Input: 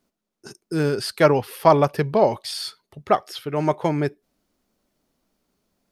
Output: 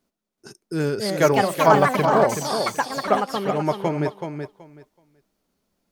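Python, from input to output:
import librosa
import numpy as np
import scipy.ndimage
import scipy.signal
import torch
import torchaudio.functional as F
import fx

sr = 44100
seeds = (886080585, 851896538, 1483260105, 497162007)

p1 = fx.echo_pitch(x, sr, ms=459, semitones=5, count=2, db_per_echo=-3.0)
p2 = p1 + fx.echo_feedback(p1, sr, ms=377, feedback_pct=18, wet_db=-7.0, dry=0)
y = p2 * librosa.db_to_amplitude(-2.0)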